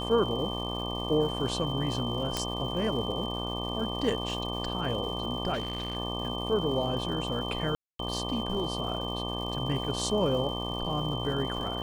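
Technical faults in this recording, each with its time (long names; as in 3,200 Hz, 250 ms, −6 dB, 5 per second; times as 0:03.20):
mains buzz 60 Hz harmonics 20 −35 dBFS
surface crackle 360 per second −41 dBFS
whistle 3,100 Hz −36 dBFS
0:02.37: click −13 dBFS
0:05.53–0:05.97: clipping −27.5 dBFS
0:07.75–0:07.99: drop-out 243 ms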